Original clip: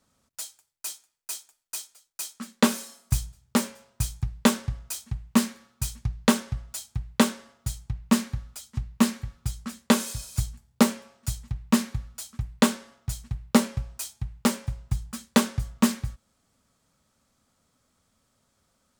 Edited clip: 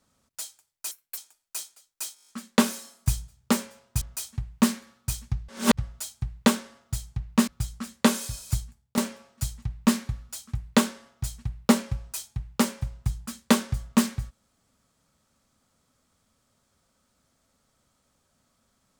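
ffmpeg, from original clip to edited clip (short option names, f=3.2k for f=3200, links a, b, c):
-filter_complex "[0:a]asplit=15[a][b][c][d][e][f][g][h][i][j][k][l][m][n][o];[a]atrim=end=0.914[p];[b]atrim=start=0.91:end=1.36,asetpts=PTS-STARTPTS,asetrate=74970,aresample=44100[q];[c]atrim=start=1.356:end=2.352[r];[d]atrim=start=2.328:end=2.352[s];[e]atrim=start=2.328:end=2.352[t];[f]atrim=start=2.328:end=2.352[u];[g]atrim=start=2.328:end=2.352[v];[h]atrim=start=2.328:end=2.352[w];[i]atrim=start=2.328:end=2.352[x];[j]atrim=start=2.328:end=4.062[y];[k]atrim=start=4.748:end=6.222[z];[l]atrim=start=6.218:end=6.512,asetpts=PTS-STARTPTS,areverse[aa];[m]atrim=start=6.508:end=8.212[ab];[n]atrim=start=9.328:end=10.83,asetpts=PTS-STARTPTS,afade=t=out:st=1.082:d=0.42:silence=0.158489[ac];[o]atrim=start=10.83,asetpts=PTS-STARTPTS,afade=t=in:d=0.004:c=hsin:silence=0.158489[ad];[p][q]acrossfade=d=0.004:c1=hsin:c2=hsin[ae];[ae][r]acrossfade=d=0.004:c1=hsin:c2=hsin[af];[af][s]acrossfade=d=0.004:c1=hsin:c2=hsin[ag];[ag][t]acrossfade=d=0.004:c1=hsin:c2=hsin[ah];[ah][u]acrossfade=d=0.004:c1=hsin:c2=hsin[ai];[ai][v]acrossfade=d=0.004:c1=hsin:c2=hsin[aj];[aj][w]acrossfade=d=0.004:c1=hsin:c2=hsin[ak];[ak][x]acrossfade=d=0.004:c1=hsin:c2=hsin[al];[al][y]acrossfade=d=0.004:c1=hsin:c2=hsin[am];[am][z]acrossfade=d=0.004:c1=hsin:c2=hsin[an];[an][aa]acrossfade=d=0.004:c1=hsin:c2=hsin[ao];[ao][ab]acrossfade=d=0.004:c1=hsin:c2=hsin[ap];[ac][ad]concat=n=2:v=0:a=1[aq];[ap][aq]acrossfade=d=0.004:c1=hsin:c2=hsin"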